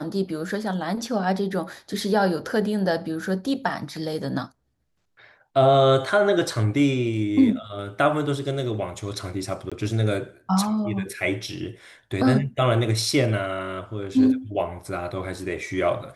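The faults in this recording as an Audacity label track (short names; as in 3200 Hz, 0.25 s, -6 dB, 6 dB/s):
9.700000	9.720000	gap 16 ms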